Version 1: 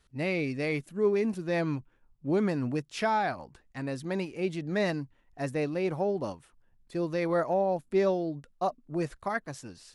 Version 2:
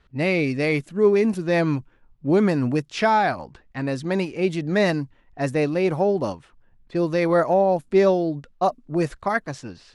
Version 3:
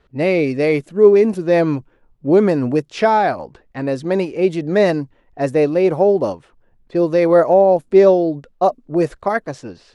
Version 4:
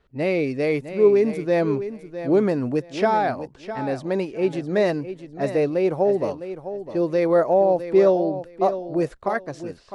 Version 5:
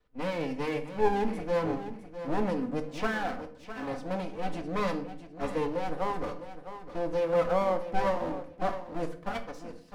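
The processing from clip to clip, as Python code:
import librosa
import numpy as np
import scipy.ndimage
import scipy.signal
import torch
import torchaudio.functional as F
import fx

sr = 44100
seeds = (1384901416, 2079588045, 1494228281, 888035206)

y1 = fx.env_lowpass(x, sr, base_hz=2900.0, full_db=-26.0)
y1 = y1 * 10.0 ** (8.5 / 20.0)
y2 = fx.peak_eq(y1, sr, hz=480.0, db=8.5, octaves=1.5)
y3 = fx.echo_feedback(y2, sr, ms=657, feedback_pct=19, wet_db=-11.5)
y3 = y3 * 10.0 ** (-6.0 / 20.0)
y4 = fx.lower_of_two(y3, sr, delay_ms=4.0)
y4 = fx.room_shoebox(y4, sr, seeds[0], volume_m3=65.0, walls='mixed', distance_m=0.33)
y4 = y4 * 10.0 ** (-8.5 / 20.0)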